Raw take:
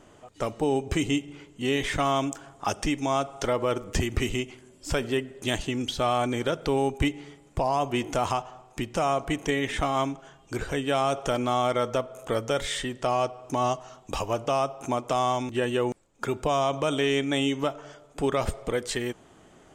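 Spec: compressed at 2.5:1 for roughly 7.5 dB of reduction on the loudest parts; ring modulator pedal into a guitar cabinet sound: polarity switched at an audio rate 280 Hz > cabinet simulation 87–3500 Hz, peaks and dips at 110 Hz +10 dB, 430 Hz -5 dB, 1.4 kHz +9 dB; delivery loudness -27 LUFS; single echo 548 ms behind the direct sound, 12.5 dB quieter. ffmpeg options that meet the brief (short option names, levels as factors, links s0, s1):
-af "acompressor=threshold=0.0251:ratio=2.5,aecho=1:1:548:0.237,aeval=exprs='val(0)*sgn(sin(2*PI*280*n/s))':c=same,highpass=87,equalizer=f=110:t=q:w=4:g=10,equalizer=f=430:t=q:w=4:g=-5,equalizer=f=1400:t=q:w=4:g=9,lowpass=f=3500:w=0.5412,lowpass=f=3500:w=1.3066,volume=2"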